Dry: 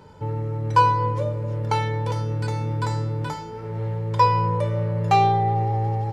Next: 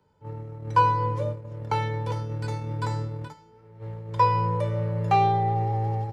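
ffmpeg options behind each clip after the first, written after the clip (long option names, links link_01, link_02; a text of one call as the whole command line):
ffmpeg -i in.wav -filter_complex "[0:a]agate=range=-16dB:threshold=-25dB:ratio=16:detection=peak,acrossover=split=220|450|3200[link_01][link_02][link_03][link_04];[link_04]alimiter=level_in=11.5dB:limit=-24dB:level=0:latency=1:release=222,volume=-11.5dB[link_05];[link_01][link_02][link_03][link_05]amix=inputs=4:normalize=0,volume=-3dB" out.wav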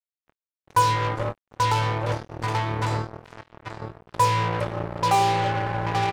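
ffmpeg -i in.wav -filter_complex "[0:a]asplit=2[link_01][link_02];[link_02]adelay=834,lowpass=frequency=3000:poles=1,volume=-4dB,asplit=2[link_03][link_04];[link_04]adelay=834,lowpass=frequency=3000:poles=1,volume=0.35,asplit=2[link_05][link_06];[link_06]adelay=834,lowpass=frequency=3000:poles=1,volume=0.35,asplit=2[link_07][link_08];[link_08]adelay=834,lowpass=frequency=3000:poles=1,volume=0.35[link_09];[link_03][link_05][link_07][link_09]amix=inputs=4:normalize=0[link_10];[link_01][link_10]amix=inputs=2:normalize=0,acrusher=bits=3:mix=0:aa=0.5" out.wav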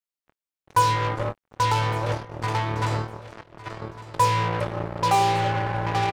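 ffmpeg -i in.wav -af "aecho=1:1:1157|2314:0.141|0.0283" out.wav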